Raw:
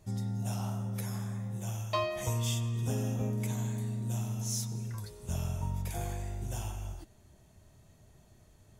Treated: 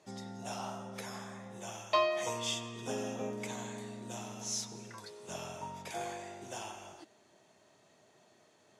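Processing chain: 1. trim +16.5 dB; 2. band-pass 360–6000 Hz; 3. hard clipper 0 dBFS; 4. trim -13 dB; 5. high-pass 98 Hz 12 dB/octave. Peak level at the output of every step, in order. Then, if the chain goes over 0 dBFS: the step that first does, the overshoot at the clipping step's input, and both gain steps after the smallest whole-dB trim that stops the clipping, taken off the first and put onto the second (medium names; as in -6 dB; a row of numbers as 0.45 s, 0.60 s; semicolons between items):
-3.0 dBFS, -3.5 dBFS, -3.5 dBFS, -16.5 dBFS, -16.5 dBFS; nothing clips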